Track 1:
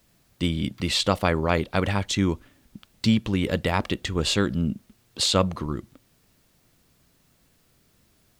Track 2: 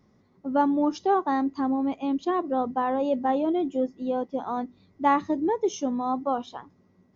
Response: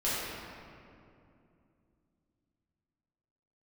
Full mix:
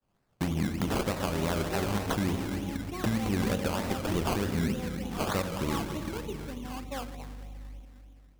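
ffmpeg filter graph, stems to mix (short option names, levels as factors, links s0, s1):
-filter_complex "[0:a]agate=range=0.0224:threshold=0.00251:ratio=3:detection=peak,acompressor=threshold=0.0501:ratio=6,volume=1,asplit=2[s0][s1];[s1]volume=0.299[s2];[1:a]aeval=exprs='val(0)+0.0158*(sin(2*PI*50*n/s)+sin(2*PI*2*50*n/s)/2+sin(2*PI*3*50*n/s)/3+sin(2*PI*4*50*n/s)/4+sin(2*PI*5*50*n/s)/5)':c=same,flanger=delay=0.1:depth=2.8:regen=52:speed=0.31:shape=sinusoidal,adelay=650,volume=0.299,asplit=2[s3][s4];[s4]volume=0.158[s5];[2:a]atrim=start_sample=2205[s6];[s2][s5]amix=inputs=2:normalize=0[s7];[s7][s6]afir=irnorm=-1:irlink=0[s8];[s0][s3][s8]amix=inputs=3:normalize=0,acrusher=samples=19:mix=1:aa=0.000001:lfo=1:lforange=11.4:lforate=3.3,alimiter=limit=0.112:level=0:latency=1:release=325"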